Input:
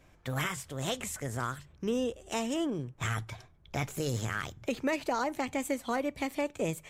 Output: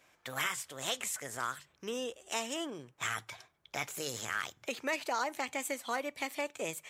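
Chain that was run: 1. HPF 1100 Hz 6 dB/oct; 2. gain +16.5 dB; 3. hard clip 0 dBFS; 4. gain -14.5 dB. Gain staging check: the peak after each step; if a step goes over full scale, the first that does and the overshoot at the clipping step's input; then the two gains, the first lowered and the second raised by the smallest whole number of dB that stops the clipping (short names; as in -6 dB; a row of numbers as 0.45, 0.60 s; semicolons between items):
-19.0, -2.5, -2.5, -17.0 dBFS; no overload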